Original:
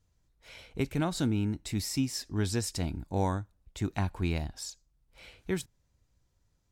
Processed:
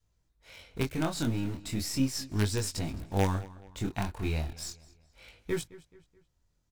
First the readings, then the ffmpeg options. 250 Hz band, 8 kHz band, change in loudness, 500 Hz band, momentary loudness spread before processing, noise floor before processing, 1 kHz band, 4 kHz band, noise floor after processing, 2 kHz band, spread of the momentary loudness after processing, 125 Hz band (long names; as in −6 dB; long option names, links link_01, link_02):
−0.5 dB, +0.5 dB, 0.0 dB, +0.5 dB, 14 LU, −73 dBFS, 0.0 dB, +0.5 dB, −74 dBFS, +1.5 dB, 15 LU, 0.0 dB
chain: -filter_complex "[0:a]adynamicequalizer=threshold=0.00891:dfrequency=190:dqfactor=1.2:tfrequency=190:tqfactor=1.2:attack=5:release=100:ratio=0.375:range=2:mode=cutabove:tftype=bell,asplit=2[link_01][link_02];[link_02]acrusher=bits=4:dc=4:mix=0:aa=0.000001,volume=-4.5dB[link_03];[link_01][link_03]amix=inputs=2:normalize=0,flanger=delay=18.5:depth=7.4:speed=0.36,asplit=2[link_04][link_05];[link_05]adelay=214,lowpass=frequency=4900:poles=1,volume=-19dB,asplit=2[link_06][link_07];[link_07]adelay=214,lowpass=frequency=4900:poles=1,volume=0.44,asplit=2[link_08][link_09];[link_09]adelay=214,lowpass=frequency=4900:poles=1,volume=0.44[link_10];[link_04][link_06][link_08][link_10]amix=inputs=4:normalize=0,volume=1dB"